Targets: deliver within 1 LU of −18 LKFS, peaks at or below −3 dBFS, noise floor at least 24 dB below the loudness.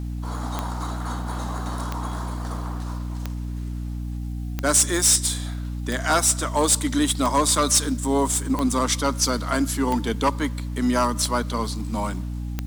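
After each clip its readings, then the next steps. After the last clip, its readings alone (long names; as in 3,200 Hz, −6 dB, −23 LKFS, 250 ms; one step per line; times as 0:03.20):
number of clicks 10; mains hum 60 Hz; hum harmonics up to 300 Hz; level of the hum −27 dBFS; integrated loudness −23.0 LKFS; sample peak −8.0 dBFS; target loudness −18.0 LKFS
→ click removal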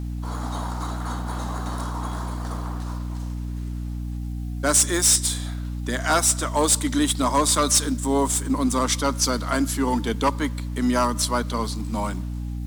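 number of clicks 0; mains hum 60 Hz; hum harmonics up to 300 Hz; level of the hum −27 dBFS
→ hum removal 60 Hz, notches 5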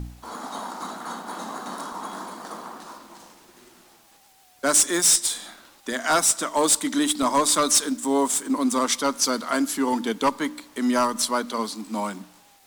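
mains hum none found; integrated loudness −22.5 LKFS; sample peak −10.5 dBFS; target loudness −18.0 LKFS
→ level +4.5 dB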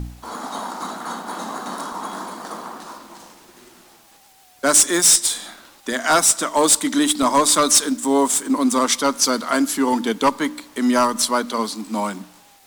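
integrated loudness −18.0 LKFS; sample peak −6.0 dBFS; background noise floor −51 dBFS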